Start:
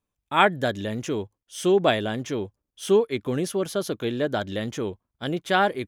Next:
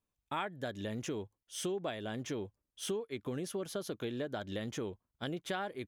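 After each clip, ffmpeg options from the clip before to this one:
ffmpeg -i in.wav -af "acompressor=threshold=-30dB:ratio=6,volume=-5dB" out.wav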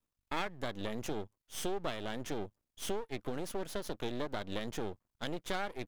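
ffmpeg -i in.wav -af "aeval=exprs='max(val(0),0)':channel_layout=same,volume=4dB" out.wav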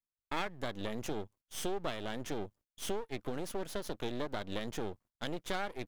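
ffmpeg -i in.wav -af "agate=range=-18dB:threshold=-60dB:ratio=16:detection=peak" out.wav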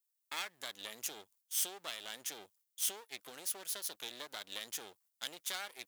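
ffmpeg -i in.wav -af "aderivative,volume=9dB" out.wav

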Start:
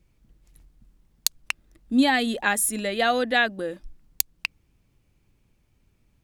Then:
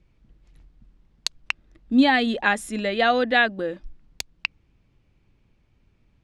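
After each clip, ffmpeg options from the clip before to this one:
ffmpeg -i in.wav -af "lowpass=4200,volume=2.5dB" out.wav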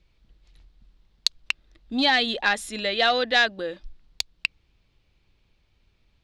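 ffmpeg -i in.wav -af "acontrast=89,equalizer=frequency=125:width_type=o:width=1:gain=-5,equalizer=frequency=250:width_type=o:width=1:gain=-6,equalizer=frequency=4000:width_type=o:width=1:gain=10,volume=-8.5dB" out.wav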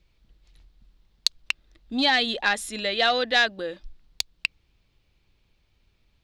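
ffmpeg -i in.wav -af "crystalizer=i=0.5:c=0,volume=-1dB" out.wav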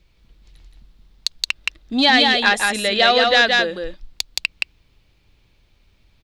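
ffmpeg -i in.wav -af "aecho=1:1:172:0.668,alimiter=level_in=7.5dB:limit=-1dB:release=50:level=0:latency=1,volume=-1dB" out.wav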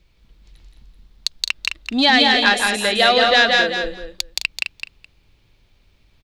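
ffmpeg -i in.wav -af "aecho=1:1:211|422:0.422|0.0633" out.wav

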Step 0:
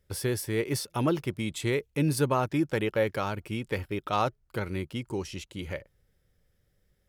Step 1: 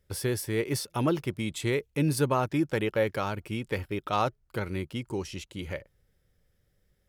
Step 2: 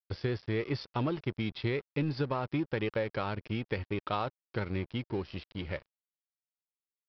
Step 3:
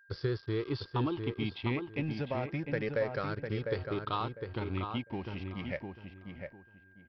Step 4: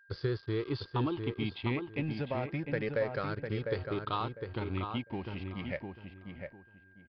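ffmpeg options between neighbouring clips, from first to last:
ffmpeg -i in.wav -af anull out.wav
ffmpeg -i in.wav -af "acompressor=threshold=-27dB:ratio=8,aresample=11025,aeval=exprs='sgn(val(0))*max(abs(val(0))-0.00501,0)':channel_layout=same,aresample=44100,lowshelf=frequency=110:gain=4" out.wav
ffmpeg -i in.wav -filter_complex "[0:a]afftfilt=real='re*pow(10,10/40*sin(2*PI*(0.58*log(max(b,1)*sr/1024/100)/log(2)-(-0.3)*(pts-256)/sr)))':imag='im*pow(10,10/40*sin(2*PI*(0.58*log(max(b,1)*sr/1024/100)/log(2)-(-0.3)*(pts-256)/sr)))':win_size=1024:overlap=0.75,aeval=exprs='val(0)+0.00158*sin(2*PI*1600*n/s)':channel_layout=same,asplit=2[link_01][link_02];[link_02]adelay=702,lowpass=frequency=2000:poles=1,volume=-5dB,asplit=2[link_03][link_04];[link_04]adelay=702,lowpass=frequency=2000:poles=1,volume=0.24,asplit=2[link_05][link_06];[link_06]adelay=702,lowpass=frequency=2000:poles=1,volume=0.24[link_07];[link_01][link_03][link_05][link_07]amix=inputs=4:normalize=0,volume=-3.5dB" out.wav
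ffmpeg -i in.wav -af "aresample=11025,aresample=44100" out.wav

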